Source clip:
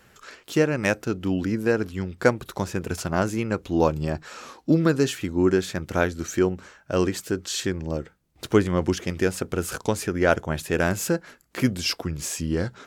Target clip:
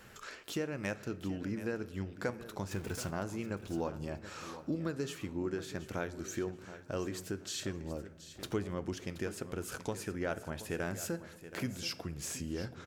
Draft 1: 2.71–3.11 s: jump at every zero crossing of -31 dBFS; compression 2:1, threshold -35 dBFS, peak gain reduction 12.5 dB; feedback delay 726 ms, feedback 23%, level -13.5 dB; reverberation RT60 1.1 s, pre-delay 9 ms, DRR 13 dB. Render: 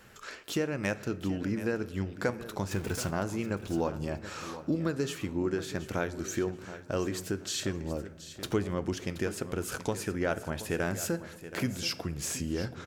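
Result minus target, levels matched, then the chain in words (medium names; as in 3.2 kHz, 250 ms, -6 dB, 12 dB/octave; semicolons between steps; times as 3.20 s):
compression: peak gain reduction -5.5 dB
2.71–3.11 s: jump at every zero crossing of -31 dBFS; compression 2:1, threshold -46.5 dBFS, peak gain reduction 18 dB; feedback delay 726 ms, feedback 23%, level -13.5 dB; reverberation RT60 1.1 s, pre-delay 9 ms, DRR 13 dB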